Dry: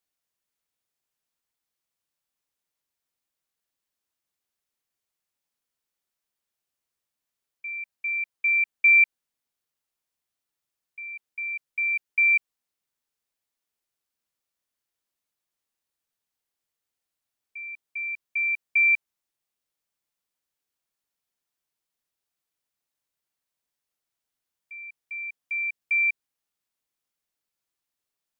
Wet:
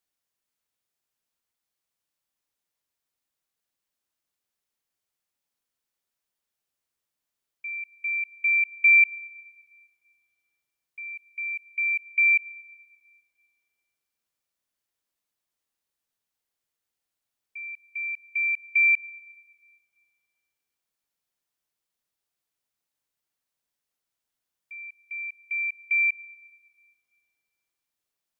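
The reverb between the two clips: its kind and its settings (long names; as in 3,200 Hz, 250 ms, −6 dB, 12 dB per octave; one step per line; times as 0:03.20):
dense smooth reverb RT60 3.5 s, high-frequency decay 0.35×, DRR 15.5 dB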